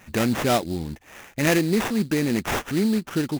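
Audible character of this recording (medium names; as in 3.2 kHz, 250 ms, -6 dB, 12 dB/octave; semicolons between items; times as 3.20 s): aliases and images of a low sample rate 4.4 kHz, jitter 20%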